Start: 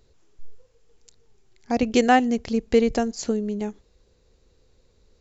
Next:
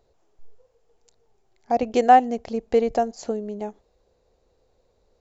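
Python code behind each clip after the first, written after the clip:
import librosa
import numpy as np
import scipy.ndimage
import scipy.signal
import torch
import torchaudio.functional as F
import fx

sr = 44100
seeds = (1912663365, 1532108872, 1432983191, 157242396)

y = fx.peak_eq(x, sr, hz=700.0, db=14.5, octaves=1.3)
y = y * librosa.db_to_amplitude(-8.0)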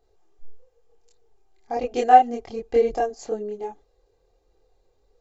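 y = x + 0.49 * np.pad(x, (int(2.5 * sr / 1000.0), 0))[:len(x)]
y = fx.chorus_voices(y, sr, voices=4, hz=0.41, base_ms=25, depth_ms=4.1, mix_pct=55)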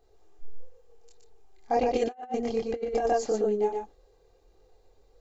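y = x + 10.0 ** (-3.5 / 20.0) * np.pad(x, (int(120 * sr / 1000.0), 0))[:len(x)]
y = fx.over_compress(y, sr, threshold_db=-24.0, ratio=-0.5)
y = y * librosa.db_to_amplitude(-2.5)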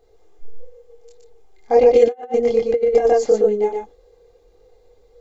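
y = fx.small_body(x, sr, hz=(480.0, 2100.0, 3400.0), ring_ms=90, db=14)
y = y * librosa.db_to_amplitude(4.5)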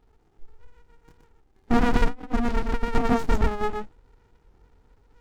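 y = fx.running_max(x, sr, window=65)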